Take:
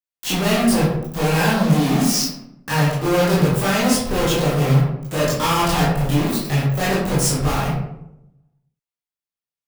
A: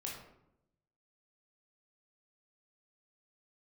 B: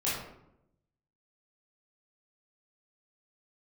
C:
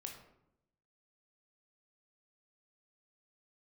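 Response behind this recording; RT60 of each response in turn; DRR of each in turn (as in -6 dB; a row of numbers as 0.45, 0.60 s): B; 0.80, 0.80, 0.80 s; -2.5, -9.0, 2.0 dB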